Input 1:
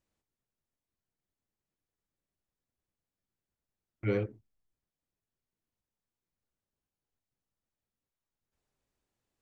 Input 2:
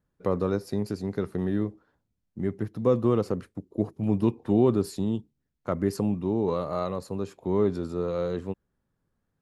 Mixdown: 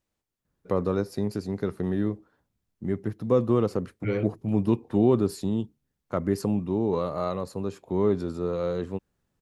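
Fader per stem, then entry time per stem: +2.5, +0.5 decibels; 0.00, 0.45 seconds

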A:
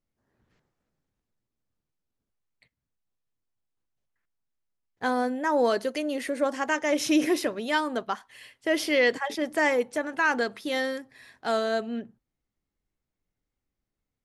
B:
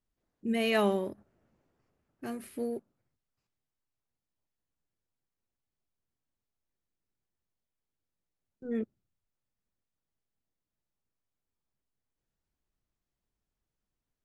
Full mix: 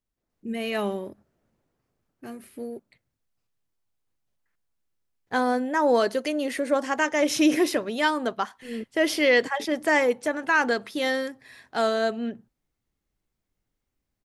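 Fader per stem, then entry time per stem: +2.5, −1.0 decibels; 0.30, 0.00 seconds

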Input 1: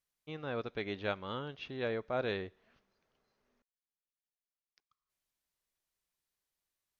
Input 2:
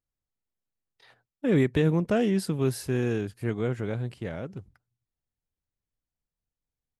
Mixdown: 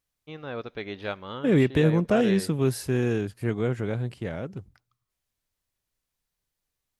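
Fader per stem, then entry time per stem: +3.0, +2.0 decibels; 0.00, 0.00 seconds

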